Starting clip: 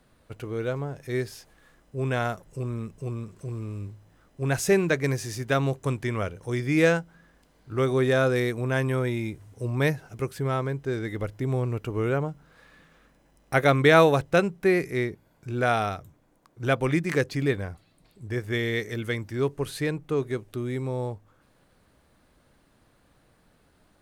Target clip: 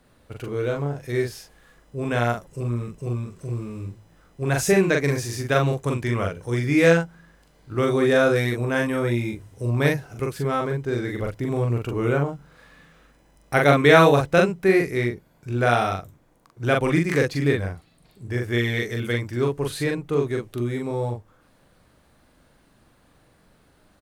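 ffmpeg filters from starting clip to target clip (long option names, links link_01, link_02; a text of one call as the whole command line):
ffmpeg -i in.wav -filter_complex "[0:a]asplit=2[link_01][link_02];[link_02]adelay=42,volume=-2.5dB[link_03];[link_01][link_03]amix=inputs=2:normalize=0,volume=2dB" out.wav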